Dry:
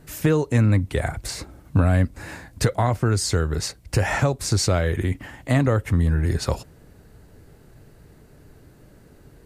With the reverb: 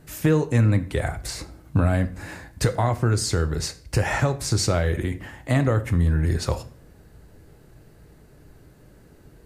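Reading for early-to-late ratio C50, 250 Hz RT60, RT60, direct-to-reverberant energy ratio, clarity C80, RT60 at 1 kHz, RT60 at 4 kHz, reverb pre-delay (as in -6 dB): 16.0 dB, 0.65 s, 0.55 s, 9.5 dB, 19.5 dB, 0.50 s, 0.40 s, 4 ms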